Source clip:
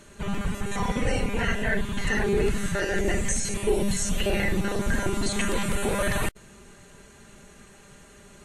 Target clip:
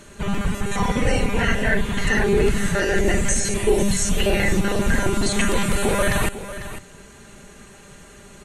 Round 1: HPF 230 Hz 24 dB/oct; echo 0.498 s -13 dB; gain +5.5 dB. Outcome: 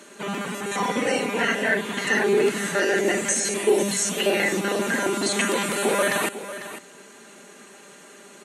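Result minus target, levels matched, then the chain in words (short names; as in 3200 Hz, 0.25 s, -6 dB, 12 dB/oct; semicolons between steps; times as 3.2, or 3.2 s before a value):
250 Hz band -2.5 dB
echo 0.498 s -13 dB; gain +5.5 dB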